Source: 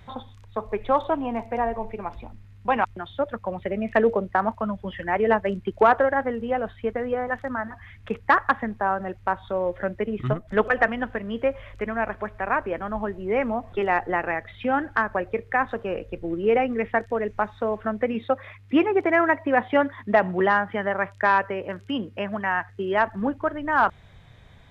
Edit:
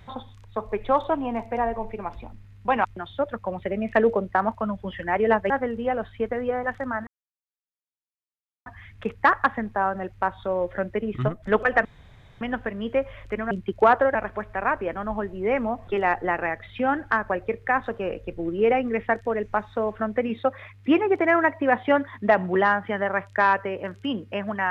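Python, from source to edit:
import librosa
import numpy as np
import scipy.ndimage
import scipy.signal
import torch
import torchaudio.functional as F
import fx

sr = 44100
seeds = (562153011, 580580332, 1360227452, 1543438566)

y = fx.edit(x, sr, fx.move(start_s=5.5, length_s=0.64, to_s=12.0),
    fx.insert_silence(at_s=7.71, length_s=1.59),
    fx.insert_room_tone(at_s=10.9, length_s=0.56), tone=tone)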